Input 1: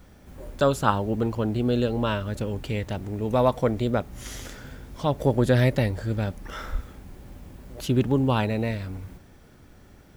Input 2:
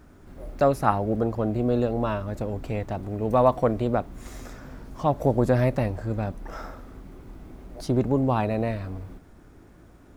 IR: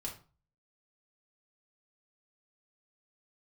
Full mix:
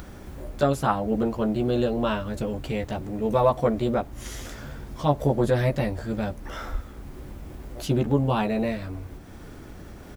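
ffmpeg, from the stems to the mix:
-filter_complex "[0:a]alimiter=limit=0.211:level=0:latency=1:release=228,volume=0.841[s0];[1:a]adelay=14,volume=0.75[s1];[s0][s1]amix=inputs=2:normalize=0,acompressor=mode=upward:threshold=0.0251:ratio=2.5"

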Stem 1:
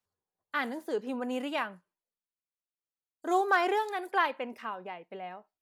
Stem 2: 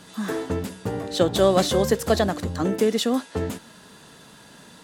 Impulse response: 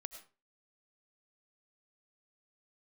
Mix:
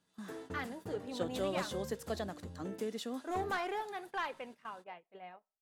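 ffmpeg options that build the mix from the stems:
-filter_complex "[0:a]asubboost=boost=3.5:cutoff=99,flanger=delay=0.4:depth=4.9:regen=78:speed=1.9:shape=sinusoidal,asoftclip=type=tanh:threshold=0.0473,volume=0.668,asplit=2[s0][s1];[s1]volume=0.158[s2];[1:a]volume=0.126[s3];[2:a]atrim=start_sample=2205[s4];[s2][s4]afir=irnorm=-1:irlink=0[s5];[s0][s3][s5]amix=inputs=3:normalize=0,agate=range=0.224:threshold=0.00316:ratio=16:detection=peak"

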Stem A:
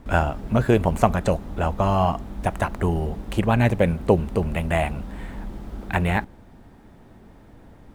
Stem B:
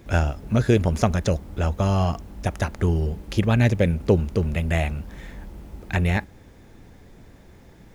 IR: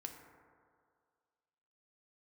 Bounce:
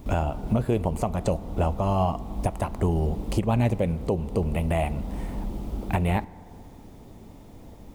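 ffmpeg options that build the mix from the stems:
-filter_complex "[0:a]volume=1,asplit=3[s0][s1][s2];[s1]volume=0.355[s3];[1:a]highshelf=f=5900:g=10,volume=0.501[s4];[s2]apad=whole_len=350238[s5];[s4][s5]sidechaincompress=threshold=0.0501:ratio=8:attack=16:release=444[s6];[2:a]atrim=start_sample=2205[s7];[s3][s7]afir=irnorm=-1:irlink=0[s8];[s0][s6][s8]amix=inputs=3:normalize=0,equalizer=f=1600:t=o:w=0.61:g=-11,alimiter=limit=0.211:level=0:latency=1:release=410"

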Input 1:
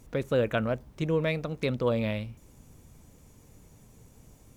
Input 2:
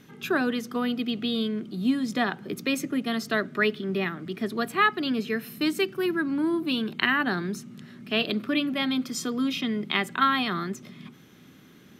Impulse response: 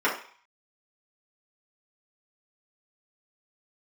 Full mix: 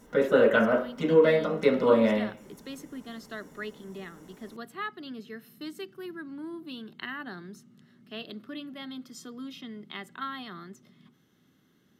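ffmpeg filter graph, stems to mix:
-filter_complex "[0:a]volume=0.562,asplit=2[s0][s1];[s1]volume=0.668[s2];[1:a]volume=0.211[s3];[2:a]atrim=start_sample=2205[s4];[s2][s4]afir=irnorm=-1:irlink=0[s5];[s0][s3][s5]amix=inputs=3:normalize=0,bandreject=f=2400:w=6.1"

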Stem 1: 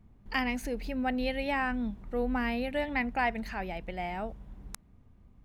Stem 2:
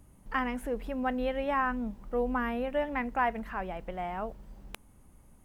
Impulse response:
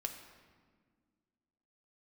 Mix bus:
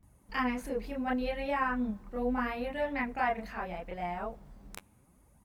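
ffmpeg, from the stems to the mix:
-filter_complex "[0:a]volume=0.447[s0];[1:a]highpass=57,equalizer=f=3000:t=o:w=0.22:g=-5,flanger=delay=1:depth=9.7:regen=23:speed=0.74:shape=sinusoidal,adelay=29,volume=1,asplit=3[s1][s2][s3];[s2]volume=0.119[s4];[s3]apad=whole_len=240331[s5];[s0][s5]sidechaingate=range=0.0224:threshold=0.00126:ratio=16:detection=peak[s6];[2:a]atrim=start_sample=2205[s7];[s4][s7]afir=irnorm=-1:irlink=0[s8];[s6][s1][s8]amix=inputs=3:normalize=0"

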